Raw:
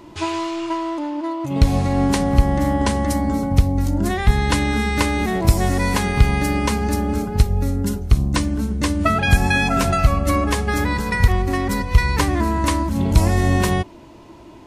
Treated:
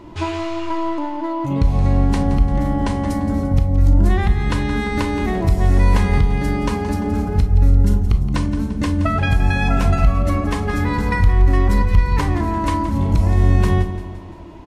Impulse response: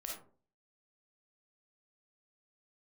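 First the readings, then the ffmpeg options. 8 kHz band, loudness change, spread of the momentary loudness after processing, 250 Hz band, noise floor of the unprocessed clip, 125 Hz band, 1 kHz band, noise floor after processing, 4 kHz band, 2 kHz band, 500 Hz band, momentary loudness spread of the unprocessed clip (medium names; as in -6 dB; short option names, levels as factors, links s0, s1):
-9.5 dB, +1.0 dB, 8 LU, 0.0 dB, -42 dBFS, +2.5 dB, -1.5 dB, -30 dBFS, -6.0 dB, -3.5 dB, -1.0 dB, 7 LU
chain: -filter_complex "[0:a]highshelf=f=4600:g=-10,acompressor=threshold=0.112:ratio=6,aecho=1:1:172|344|516|688|860:0.224|0.116|0.0605|0.0315|0.0164,asplit=2[s0][s1];[1:a]atrim=start_sample=2205,asetrate=70560,aresample=44100,lowshelf=f=210:g=12[s2];[s1][s2]afir=irnorm=-1:irlink=0,volume=1.06[s3];[s0][s3]amix=inputs=2:normalize=0,volume=0.891"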